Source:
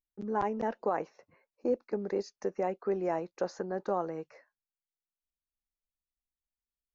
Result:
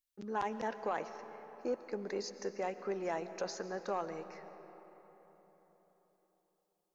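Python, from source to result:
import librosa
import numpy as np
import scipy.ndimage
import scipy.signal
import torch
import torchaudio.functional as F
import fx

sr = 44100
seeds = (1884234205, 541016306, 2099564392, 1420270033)

y = fx.tilt_shelf(x, sr, db=-7.0, hz=1400.0)
y = 10.0 ** (-24.5 / 20.0) * np.tanh(y / 10.0 ** (-24.5 / 20.0))
y = fx.rev_freeverb(y, sr, rt60_s=4.3, hf_ratio=0.55, predelay_ms=80, drr_db=10.5)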